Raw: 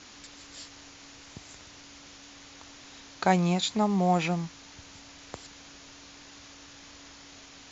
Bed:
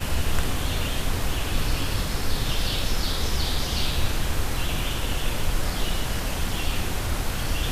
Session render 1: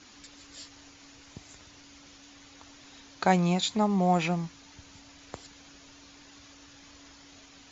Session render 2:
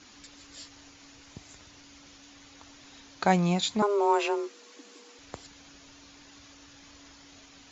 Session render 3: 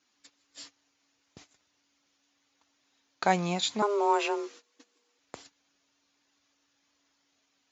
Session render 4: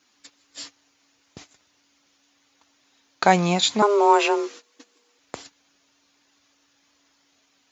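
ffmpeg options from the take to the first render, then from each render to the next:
-af "afftdn=nr=6:nf=-50"
-filter_complex "[0:a]asettb=1/sr,asplit=3[a][b][c];[a]atrim=end=3.824[d];[b]atrim=start=3.82:end=5.19,asetpts=PTS-STARTPTS,afade=t=in:d=0.004:c=qsin,afade=t=out:st=1.366:d=0.004:c=qsin,afreqshift=200[e];[c]atrim=start=5.186[f];[d][e]acrossfade=d=0.004:c1=hsin:c2=qsin[g];[g][f]acrossfade=d=0.004:c1=qsin:c2=hsin"
-af "agate=range=-20dB:threshold=-47dB:ratio=16:detection=peak,highpass=f=340:p=1"
-af "volume=9dB,alimiter=limit=-2dB:level=0:latency=1"

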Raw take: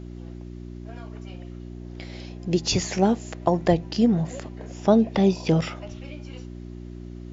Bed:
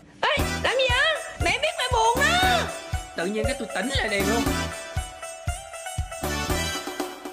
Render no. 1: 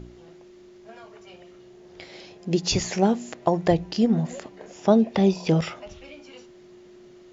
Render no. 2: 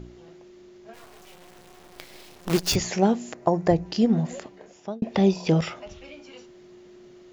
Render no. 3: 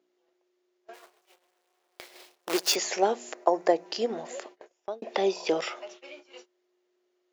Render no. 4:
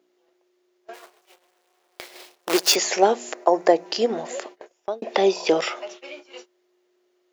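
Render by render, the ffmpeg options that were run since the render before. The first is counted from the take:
-af "bandreject=f=60:t=h:w=4,bandreject=f=120:t=h:w=4,bandreject=f=180:t=h:w=4,bandreject=f=240:t=h:w=4,bandreject=f=300:t=h:w=4"
-filter_complex "[0:a]asplit=3[a][b][c];[a]afade=t=out:st=0.93:d=0.02[d];[b]acrusher=bits=5:dc=4:mix=0:aa=0.000001,afade=t=in:st=0.93:d=0.02,afade=t=out:st=2.74:d=0.02[e];[c]afade=t=in:st=2.74:d=0.02[f];[d][e][f]amix=inputs=3:normalize=0,asettb=1/sr,asplit=3[g][h][i];[g]atrim=end=3.334[j];[h]atrim=start=3.33:end=3.86,asetpts=PTS-STARTPTS,afade=t=in:d=0.004:c=qsin,afade=t=out:st=0.526:d=0.004:c=qsin,equalizer=f=3.3k:w=1.7:g=-10.5[k];[i]atrim=start=3.856[l];[j][k]acrossfade=d=0.004:c1=hsin:c2=qsin[m];[m][l]acrossfade=d=0.004:c1=qsin:c2=hsin,asplit=2[n][o];[n]atrim=end=5.02,asetpts=PTS-STARTPTS,afade=t=out:st=4.37:d=0.65[p];[o]atrim=start=5.02,asetpts=PTS-STARTPTS,afade=t=in:d=0.004:c=hsin[q];[p][q]concat=n=2:v=0:a=1"
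-af "highpass=f=380:w=0.5412,highpass=f=380:w=1.3066,agate=range=-22dB:threshold=-47dB:ratio=16:detection=peak"
-af "volume=7dB,alimiter=limit=-3dB:level=0:latency=1"

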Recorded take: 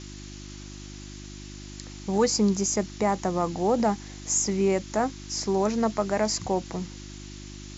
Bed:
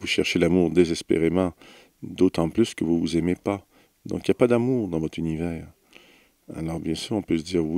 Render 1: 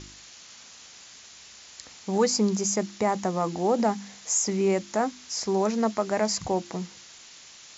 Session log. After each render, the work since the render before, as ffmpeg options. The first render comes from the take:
-af "bandreject=f=50:t=h:w=4,bandreject=f=100:t=h:w=4,bandreject=f=150:t=h:w=4,bandreject=f=200:t=h:w=4,bandreject=f=250:t=h:w=4,bandreject=f=300:t=h:w=4,bandreject=f=350:t=h:w=4"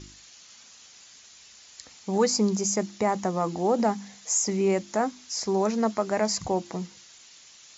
-af "afftdn=nr=6:nf=-49"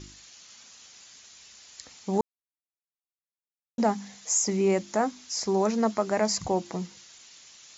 -filter_complex "[0:a]asplit=3[a][b][c];[a]atrim=end=2.21,asetpts=PTS-STARTPTS,afade=t=out:st=2.206:d=0.004:c=hsin[d];[b]atrim=start=2.21:end=3.78,asetpts=PTS-STARTPTS,volume=0[e];[c]atrim=start=3.78,asetpts=PTS-STARTPTS,afade=t=in:d=0.004:c=hsin[f];[d][e][f]concat=n=3:v=0:a=1"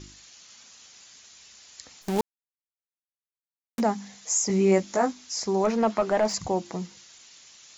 -filter_complex "[0:a]asplit=3[a][b][c];[a]afade=t=out:st=2.01:d=0.02[d];[b]acrusher=bits=6:dc=4:mix=0:aa=0.000001,afade=t=in:st=2.01:d=0.02,afade=t=out:st=3.79:d=0.02[e];[c]afade=t=in:st=3.79:d=0.02[f];[d][e][f]amix=inputs=3:normalize=0,asettb=1/sr,asplit=3[g][h][i];[g]atrim=end=4.484[j];[h]atrim=start=4.48:end=5.13,asetpts=PTS-STARTPTS,afade=t=in:d=0.004:c=qsin,afade=t=out:st=0.646:d=0.004:c=qsin,asplit=2[k][l];[l]adelay=16,volume=-2.5dB[m];[k][m]amix=inputs=2:normalize=0,atrim=end_sample=28665[n];[i]atrim=start=5.126[o];[j][n]acrossfade=d=0.004:c1=hsin:c2=qsin[p];[p][o]acrossfade=d=0.004:c1=qsin:c2=hsin,asettb=1/sr,asplit=3[q][r][s];[q]atrim=end=5.644[t];[r]atrim=start=5.64:end=6.34,asetpts=PTS-STARTPTS,afade=t=in:d=0.004:c=qsin,afade=t=out:st=0.696:d=0.004:c=qsin,asplit=2[u][v];[v]highpass=f=720:p=1,volume=16dB,asoftclip=type=tanh:threshold=-12dB[w];[u][w]amix=inputs=2:normalize=0,lowpass=f=1.3k:p=1,volume=-6dB[x];[s]atrim=start=6.336[y];[t][x]acrossfade=d=0.004:c1=hsin:c2=qsin[z];[z][y]acrossfade=d=0.004:c1=qsin:c2=hsin"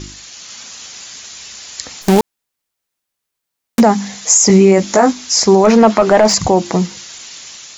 -af "dynaudnorm=f=290:g=3:m=3dB,alimiter=level_in=15dB:limit=-1dB:release=50:level=0:latency=1"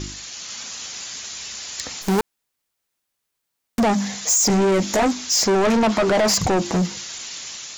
-af "asoftclip=type=tanh:threshold=-15dB"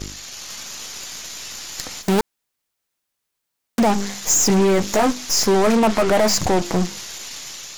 -af "aeval=exprs='0.178*(cos(1*acos(clip(val(0)/0.178,-1,1)))-cos(1*PI/2))+0.0398*(cos(3*acos(clip(val(0)/0.178,-1,1)))-cos(3*PI/2))+0.0447*(cos(4*acos(clip(val(0)/0.178,-1,1)))-cos(4*PI/2))+0.0224*(cos(5*acos(clip(val(0)/0.178,-1,1)))-cos(5*PI/2))':c=same"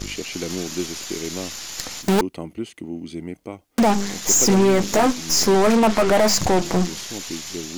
-filter_complex "[1:a]volume=-9dB[a];[0:a][a]amix=inputs=2:normalize=0"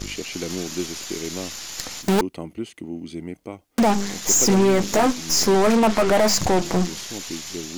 -af "volume=-1dB"

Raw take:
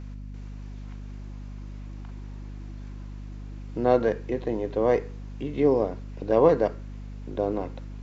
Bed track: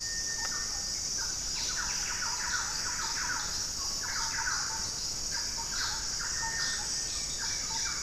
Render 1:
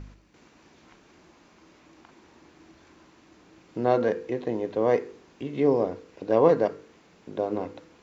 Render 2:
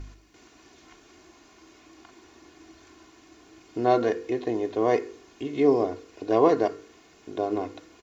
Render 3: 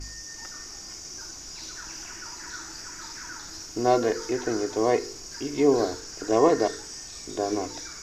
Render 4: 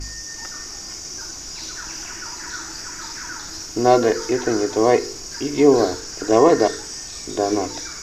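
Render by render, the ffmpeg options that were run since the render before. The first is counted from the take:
-af "bandreject=f=50:t=h:w=4,bandreject=f=100:t=h:w=4,bandreject=f=150:t=h:w=4,bandreject=f=200:t=h:w=4,bandreject=f=250:t=h:w=4,bandreject=f=300:t=h:w=4,bandreject=f=350:t=h:w=4,bandreject=f=400:t=h:w=4,bandreject=f=450:t=h:w=4,bandreject=f=500:t=h:w=4"
-af "aemphasis=mode=production:type=cd,aecho=1:1:2.8:0.61"
-filter_complex "[1:a]volume=-6.5dB[a];[0:a][a]amix=inputs=2:normalize=0"
-af "volume=7dB,alimiter=limit=-2dB:level=0:latency=1"

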